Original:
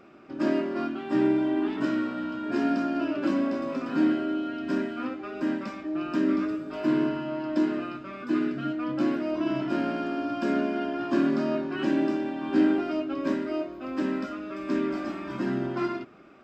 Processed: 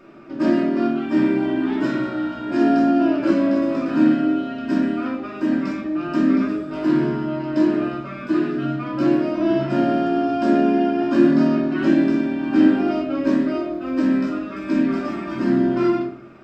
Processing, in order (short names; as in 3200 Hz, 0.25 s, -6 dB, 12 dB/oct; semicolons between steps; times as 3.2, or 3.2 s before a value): shoebox room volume 480 m³, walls furnished, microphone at 2.7 m; gain +2 dB